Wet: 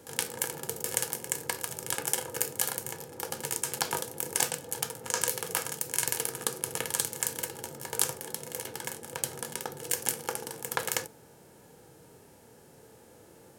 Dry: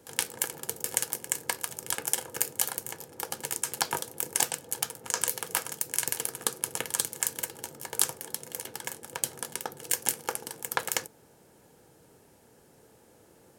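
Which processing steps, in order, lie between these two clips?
harmonic-percussive split percussive -9 dB; gain +6.5 dB

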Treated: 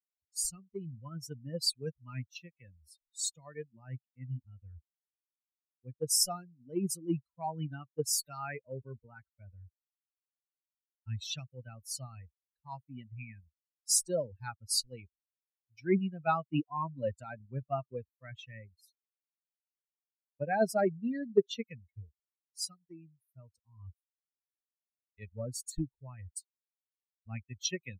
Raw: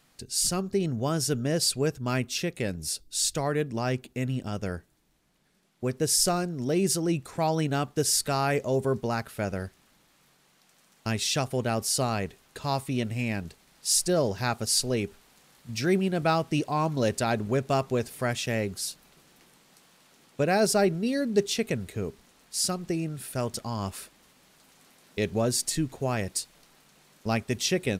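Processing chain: per-bin expansion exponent 3; three-band expander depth 70%; gain -4 dB

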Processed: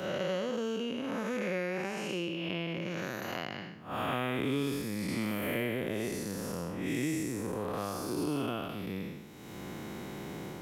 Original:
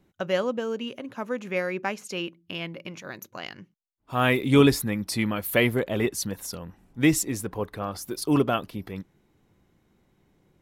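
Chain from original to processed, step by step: time blur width 0.273 s; HPF 140 Hz 6 dB/oct; three-band squash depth 100%; gain -2.5 dB

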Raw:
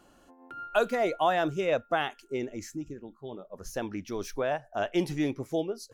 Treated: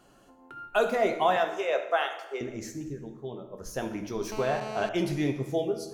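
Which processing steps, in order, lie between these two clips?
1.36–2.41 HPF 440 Hz 24 dB/oct; reverb RT60 1.1 s, pre-delay 4 ms, DRR 4 dB; 4.32–4.89 GSM buzz -38 dBFS

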